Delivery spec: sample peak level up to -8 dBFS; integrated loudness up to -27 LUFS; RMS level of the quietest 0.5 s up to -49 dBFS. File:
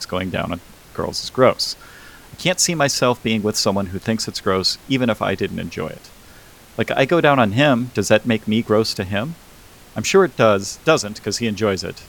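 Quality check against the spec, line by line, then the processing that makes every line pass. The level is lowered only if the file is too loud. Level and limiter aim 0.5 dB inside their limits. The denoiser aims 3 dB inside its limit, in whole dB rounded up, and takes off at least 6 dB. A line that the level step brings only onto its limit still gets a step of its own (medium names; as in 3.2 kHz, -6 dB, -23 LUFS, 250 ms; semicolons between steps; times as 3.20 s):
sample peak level -2.0 dBFS: fail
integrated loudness -19.0 LUFS: fail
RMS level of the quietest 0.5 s -44 dBFS: fail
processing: trim -8.5 dB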